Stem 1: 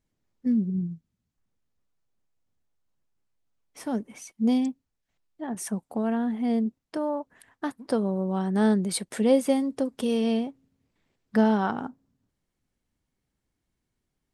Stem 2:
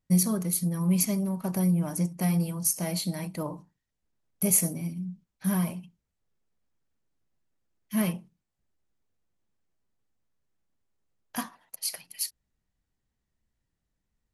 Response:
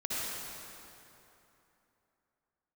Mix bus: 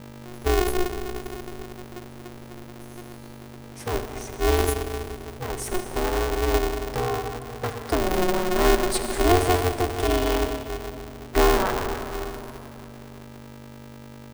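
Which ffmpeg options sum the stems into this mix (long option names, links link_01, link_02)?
-filter_complex "[0:a]aeval=exprs='val(0)+0.00794*(sin(2*PI*50*n/s)+sin(2*PI*2*50*n/s)/2+sin(2*PI*3*50*n/s)/3+sin(2*PI*4*50*n/s)/4+sin(2*PI*5*50*n/s)/5)':channel_layout=same,volume=-0.5dB,asplit=3[link_01][link_02][link_03];[link_02]volume=-8.5dB[link_04];[1:a]lowshelf=frequency=430:gain=10.5,adelay=150,volume=-11.5dB,asplit=2[link_05][link_06];[link_06]volume=-19.5dB[link_07];[link_03]apad=whole_len=638996[link_08];[link_05][link_08]sidechaingate=range=-33dB:threshold=-30dB:ratio=16:detection=peak[link_09];[2:a]atrim=start_sample=2205[link_10];[link_04][link_07]amix=inputs=2:normalize=0[link_11];[link_11][link_10]afir=irnorm=-1:irlink=0[link_12];[link_01][link_09][link_12]amix=inputs=3:normalize=0,aeval=exprs='val(0)*sgn(sin(2*PI*180*n/s))':channel_layout=same"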